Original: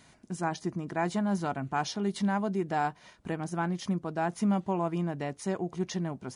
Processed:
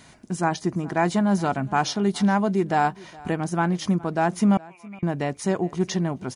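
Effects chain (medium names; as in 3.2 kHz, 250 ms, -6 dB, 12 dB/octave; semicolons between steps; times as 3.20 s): 4.57–5.03 s: band-pass filter 2.3 kHz, Q 13; delay 417 ms -22 dB; trim +8 dB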